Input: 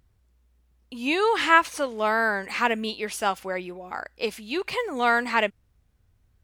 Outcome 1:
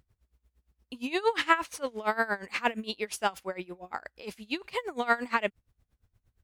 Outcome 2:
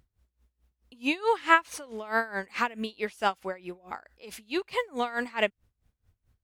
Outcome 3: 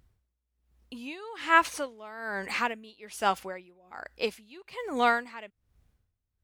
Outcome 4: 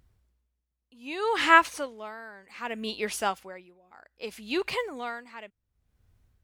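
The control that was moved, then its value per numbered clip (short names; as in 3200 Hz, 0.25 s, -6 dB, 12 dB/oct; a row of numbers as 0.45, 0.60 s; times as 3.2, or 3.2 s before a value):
dB-linear tremolo, rate: 8.6, 4.6, 1.2, 0.65 Hz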